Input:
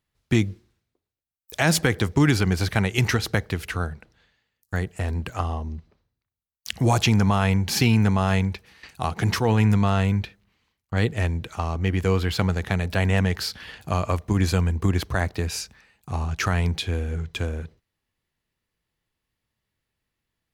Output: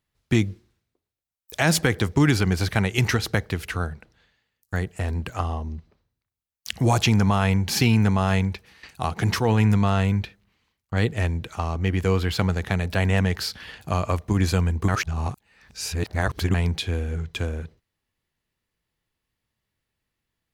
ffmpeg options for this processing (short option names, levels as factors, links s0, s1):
-filter_complex "[0:a]asplit=3[s0][s1][s2];[s0]atrim=end=14.882[s3];[s1]atrim=start=14.878:end=16.542,asetpts=PTS-STARTPTS,areverse[s4];[s2]atrim=start=16.538[s5];[s3][s4]acrossfade=d=0.004:c1=hsin:c2=hsin[s6];[s6][s5]acrossfade=d=0.004:c1=hsin:c2=hsin"